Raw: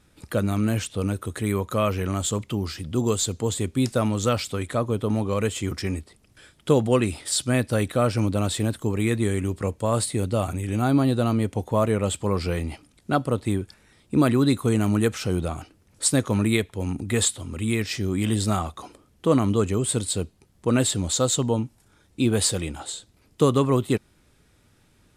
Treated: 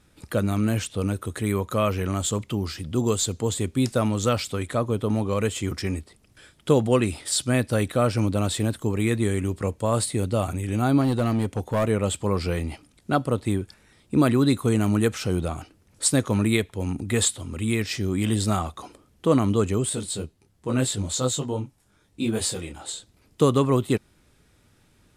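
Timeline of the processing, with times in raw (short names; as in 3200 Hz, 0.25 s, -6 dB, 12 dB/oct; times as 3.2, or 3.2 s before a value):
11.01–11.85 overloaded stage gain 17.5 dB
19.89–22.85 detuned doubles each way 30 cents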